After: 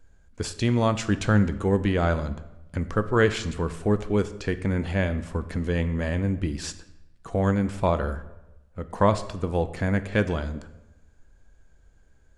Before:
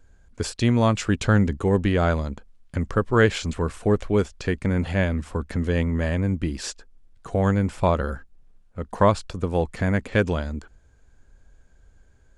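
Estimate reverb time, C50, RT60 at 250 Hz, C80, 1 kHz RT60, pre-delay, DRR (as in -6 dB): 1.0 s, 14.0 dB, 1.0 s, 16.0 dB, 0.95 s, 6 ms, 10.5 dB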